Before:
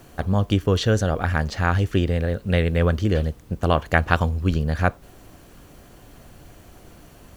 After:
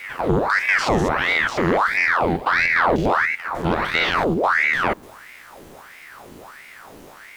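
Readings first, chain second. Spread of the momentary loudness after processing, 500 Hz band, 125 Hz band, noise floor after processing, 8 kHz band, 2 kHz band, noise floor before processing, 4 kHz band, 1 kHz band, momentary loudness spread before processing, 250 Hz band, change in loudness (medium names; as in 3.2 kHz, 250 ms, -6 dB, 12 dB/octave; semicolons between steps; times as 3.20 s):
5 LU, +2.0 dB, -9.0 dB, -44 dBFS, no reading, +10.0 dB, -49 dBFS, +4.5 dB, +7.5 dB, 4 LU, -0.5 dB, +3.5 dB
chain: spectrogram pixelated in time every 100 ms; in parallel at 0 dB: peak limiter -16 dBFS, peak gain reduction 8 dB; on the sum: saturation -9.5 dBFS, distortion -21 dB; reverse echo 257 ms -16.5 dB; ring modulator with a swept carrier 1.2 kHz, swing 80%, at 1.5 Hz; trim +2 dB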